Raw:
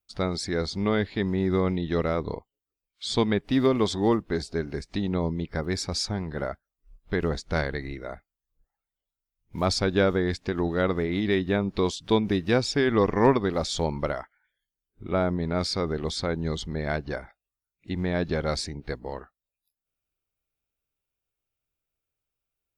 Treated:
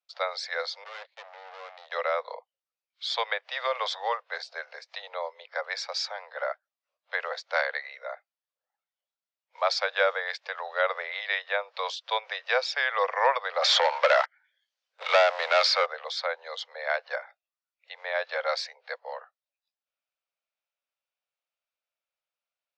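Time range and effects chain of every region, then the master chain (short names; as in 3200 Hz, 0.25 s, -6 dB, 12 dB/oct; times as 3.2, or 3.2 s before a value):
0.84–1.92 tube stage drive 34 dB, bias 0.75 + gate -39 dBFS, range -22 dB
13.62–15.86 sample leveller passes 3 + three-band squash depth 70%
whole clip: steep high-pass 500 Hz 96 dB/oct; dynamic EQ 1800 Hz, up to +5 dB, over -42 dBFS, Q 0.92; LPF 5300 Hz 24 dB/oct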